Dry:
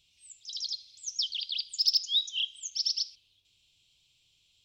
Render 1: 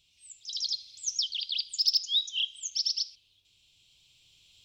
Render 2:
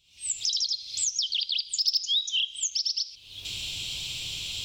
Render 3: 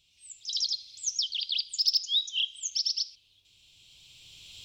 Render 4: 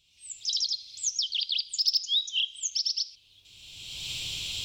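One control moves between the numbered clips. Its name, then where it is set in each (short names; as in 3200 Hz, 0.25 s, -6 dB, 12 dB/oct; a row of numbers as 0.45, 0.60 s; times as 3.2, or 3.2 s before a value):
recorder AGC, rising by: 5.1, 77, 13, 31 dB/s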